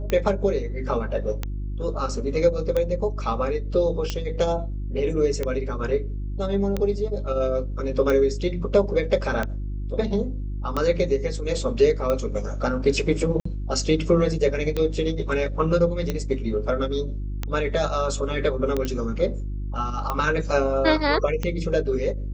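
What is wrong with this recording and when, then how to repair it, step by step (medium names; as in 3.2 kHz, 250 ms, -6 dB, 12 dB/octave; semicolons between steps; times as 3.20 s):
hum 50 Hz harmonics 7 -29 dBFS
tick 45 rpm -12 dBFS
13.40–13.45 s: dropout 54 ms
18.85 s: pop -14 dBFS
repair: de-click; de-hum 50 Hz, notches 7; interpolate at 13.40 s, 54 ms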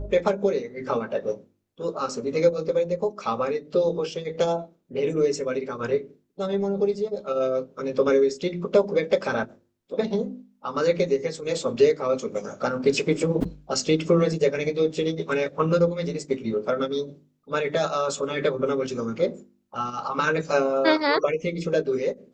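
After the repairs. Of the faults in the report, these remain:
nothing left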